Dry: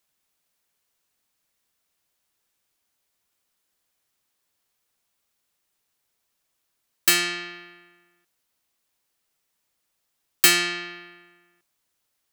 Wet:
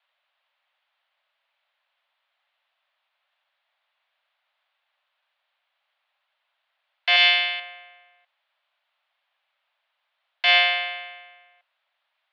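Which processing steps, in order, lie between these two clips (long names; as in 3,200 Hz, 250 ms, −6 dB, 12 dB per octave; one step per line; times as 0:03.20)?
0:07.16–0:07.60: high-shelf EQ 2,200 Hz +11.5 dB
brickwall limiter −12 dBFS, peak gain reduction 9.5 dB
single-sideband voice off tune +360 Hz 200–3,300 Hz
level +7.5 dB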